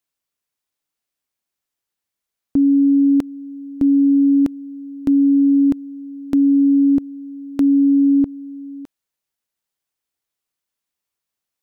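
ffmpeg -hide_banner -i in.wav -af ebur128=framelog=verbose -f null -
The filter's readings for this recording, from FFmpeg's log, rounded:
Integrated loudness:
  I:         -15.7 LUFS
  Threshold: -26.9 LUFS
Loudness range:
  LRA:         5.1 LU
  Threshold: -38.0 LUFS
  LRA low:   -21.2 LUFS
  LRA high:  -16.0 LUFS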